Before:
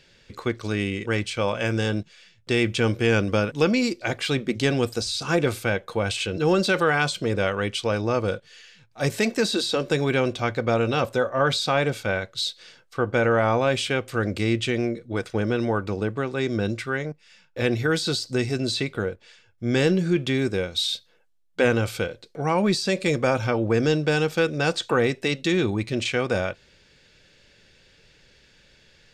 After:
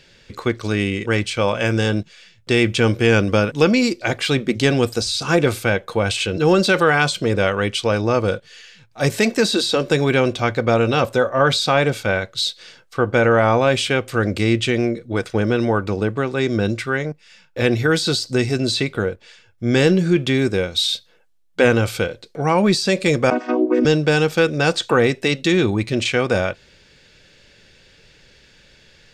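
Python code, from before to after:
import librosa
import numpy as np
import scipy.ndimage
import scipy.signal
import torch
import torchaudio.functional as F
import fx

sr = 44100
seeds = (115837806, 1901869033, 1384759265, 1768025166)

y = fx.chord_vocoder(x, sr, chord='major triad', root=59, at=(23.3, 23.85))
y = y * 10.0 ** (5.5 / 20.0)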